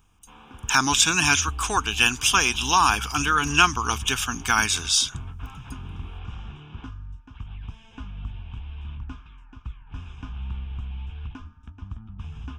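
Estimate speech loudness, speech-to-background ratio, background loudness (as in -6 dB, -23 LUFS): -20.5 LUFS, 18.0 dB, -38.5 LUFS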